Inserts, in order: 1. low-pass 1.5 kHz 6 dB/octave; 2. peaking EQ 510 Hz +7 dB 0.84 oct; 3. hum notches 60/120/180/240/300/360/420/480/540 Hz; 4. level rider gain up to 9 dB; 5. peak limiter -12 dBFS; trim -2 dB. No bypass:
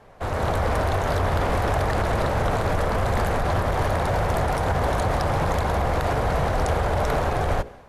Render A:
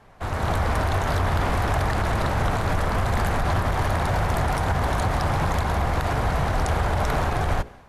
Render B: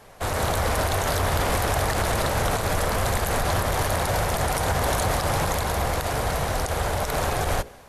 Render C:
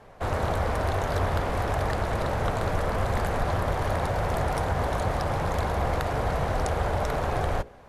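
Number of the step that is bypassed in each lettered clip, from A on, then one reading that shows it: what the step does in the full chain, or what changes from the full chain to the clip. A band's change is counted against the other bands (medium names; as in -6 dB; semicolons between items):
2, 500 Hz band -5.0 dB; 1, 8 kHz band +12.5 dB; 4, crest factor change +4.0 dB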